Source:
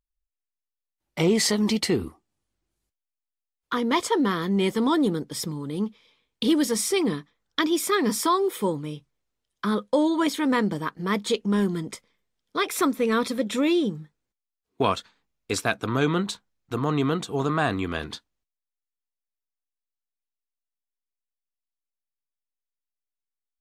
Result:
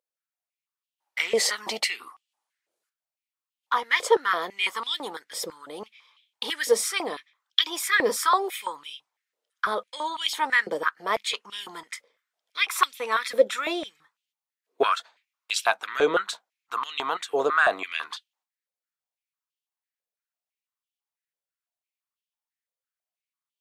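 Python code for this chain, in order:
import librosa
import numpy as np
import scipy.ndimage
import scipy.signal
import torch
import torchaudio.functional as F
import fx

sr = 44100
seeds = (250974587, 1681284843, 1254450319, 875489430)

y = fx.filter_held_highpass(x, sr, hz=6.0, low_hz=520.0, high_hz=3000.0)
y = F.gain(torch.from_numpy(y), -1.0).numpy()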